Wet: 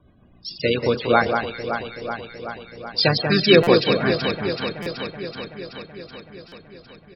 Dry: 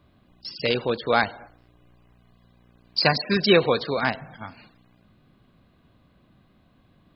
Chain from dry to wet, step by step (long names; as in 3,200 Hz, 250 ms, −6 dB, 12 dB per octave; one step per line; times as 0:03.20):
rotating-speaker cabinet horn 7.5 Hz, later 0.6 Hz, at 0:03.10
pitch-shifted copies added −5 semitones −10 dB
spectral peaks only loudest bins 64
on a send: delay that swaps between a low-pass and a high-pass 189 ms, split 2,100 Hz, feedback 83%, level −5.5 dB
on the sum: buffer that repeats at 0:03.63/0:04.82/0:06.48, samples 256, times 6
level +5 dB